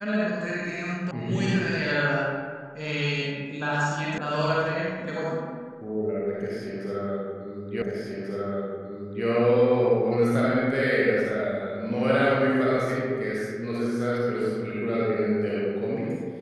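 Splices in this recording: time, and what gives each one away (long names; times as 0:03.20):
0:01.11: cut off before it has died away
0:04.18: cut off before it has died away
0:07.82: the same again, the last 1.44 s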